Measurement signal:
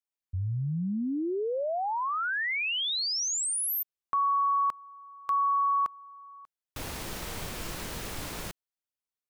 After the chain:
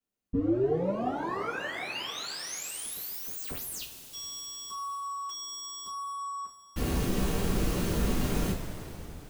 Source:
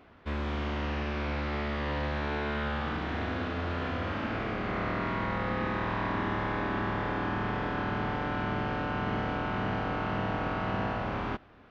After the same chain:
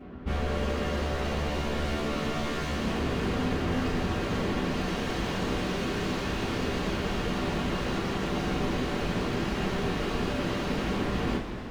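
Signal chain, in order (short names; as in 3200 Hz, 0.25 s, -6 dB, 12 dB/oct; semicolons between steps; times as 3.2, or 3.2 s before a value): wavefolder -35.5 dBFS; tilt shelf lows +7.5 dB, about 690 Hz; two-slope reverb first 0.26 s, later 4.1 s, from -18 dB, DRR -9.5 dB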